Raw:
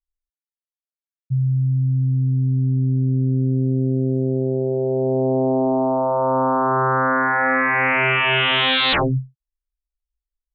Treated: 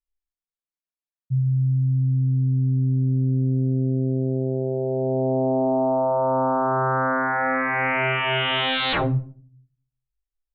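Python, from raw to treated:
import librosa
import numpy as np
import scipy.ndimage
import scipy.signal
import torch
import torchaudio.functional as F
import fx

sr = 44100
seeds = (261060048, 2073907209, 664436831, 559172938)

y = fx.lowpass(x, sr, hz=3000.0, slope=6)
y = fx.room_shoebox(y, sr, seeds[0], volume_m3=420.0, walls='furnished', distance_m=0.6)
y = F.gain(torch.from_numpy(y), -3.5).numpy()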